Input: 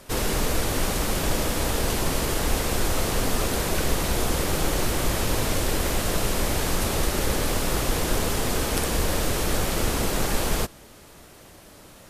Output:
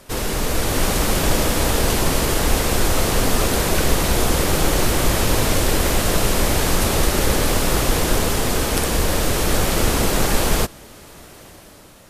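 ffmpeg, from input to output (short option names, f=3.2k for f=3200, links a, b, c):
-af "dynaudnorm=f=140:g=9:m=5dB,volume=1.5dB"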